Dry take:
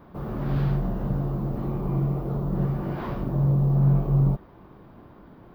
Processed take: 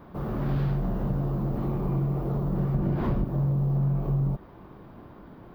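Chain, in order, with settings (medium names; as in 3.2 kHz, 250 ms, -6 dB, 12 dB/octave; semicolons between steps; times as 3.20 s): 2.74–3.25 s: bass shelf 430 Hz +11.5 dB; compression, threshold -22 dBFS, peak gain reduction 7.5 dB; in parallel at -9 dB: hard clipper -31 dBFS, distortion -7 dB; on the sum: trim -1 dB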